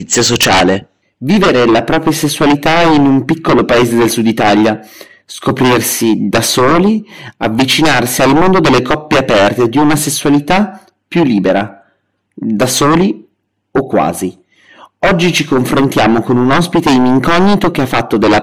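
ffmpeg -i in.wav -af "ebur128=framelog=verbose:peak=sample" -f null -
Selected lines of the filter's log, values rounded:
Integrated loudness:
  I:         -10.6 LUFS
  Threshold: -21.2 LUFS
Loudness range:
  LRA:         3.8 LU
  Threshold: -31.3 LUFS
  LRA low:   -13.7 LUFS
  LRA high:   -9.9 LUFS
Sample peak:
  Peak:       -3.7 dBFS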